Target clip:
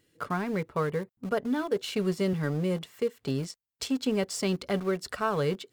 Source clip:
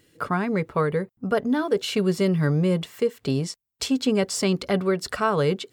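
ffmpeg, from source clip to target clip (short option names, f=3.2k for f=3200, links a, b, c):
-filter_complex "[0:a]asettb=1/sr,asplit=3[a][b][c];[a]atrim=end=2.334[d];[b]atrim=start=2.33:end=2.83,asetpts=PTS-STARTPTS,afade=t=in:d=0.004:c=qsin,afade=t=out:st=0.496:d=0.004:c=qsin,highpass=150[e];[c]atrim=start=2.826[f];[d][e]acrossfade=d=0.004:c1=hsin:c2=qsin[g];[g][f]acrossfade=d=0.004:c1=qsin:c2=hsin,asplit=2[h][i];[i]aeval=exprs='val(0)*gte(abs(val(0)),0.0531)':c=same,volume=-8.5dB[j];[h][j]amix=inputs=2:normalize=0,volume=-8.5dB"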